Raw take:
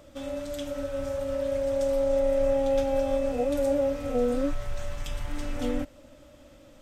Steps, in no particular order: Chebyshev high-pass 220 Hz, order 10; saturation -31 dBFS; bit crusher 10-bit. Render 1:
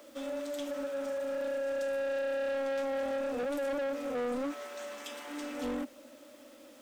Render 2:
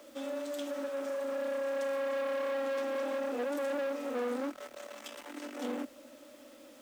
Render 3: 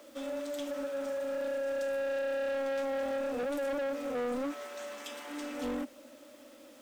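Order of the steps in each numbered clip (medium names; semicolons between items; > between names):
Chebyshev high-pass > bit crusher > saturation; saturation > Chebyshev high-pass > bit crusher; Chebyshev high-pass > saturation > bit crusher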